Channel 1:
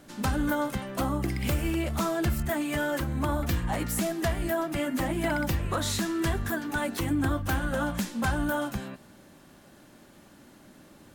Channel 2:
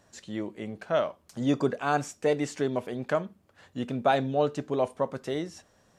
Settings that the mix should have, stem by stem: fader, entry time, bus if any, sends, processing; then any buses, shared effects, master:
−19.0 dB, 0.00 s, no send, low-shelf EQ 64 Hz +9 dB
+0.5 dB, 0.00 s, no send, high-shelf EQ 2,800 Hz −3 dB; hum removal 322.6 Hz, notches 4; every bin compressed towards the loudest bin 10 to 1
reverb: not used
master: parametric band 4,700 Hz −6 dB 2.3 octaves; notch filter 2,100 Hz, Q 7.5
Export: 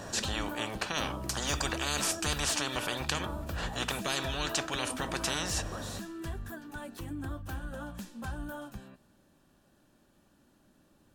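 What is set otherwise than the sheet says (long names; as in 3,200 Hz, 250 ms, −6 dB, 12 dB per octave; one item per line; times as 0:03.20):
stem 1 −19.0 dB → −13.0 dB
master: missing parametric band 4,700 Hz −6 dB 2.3 octaves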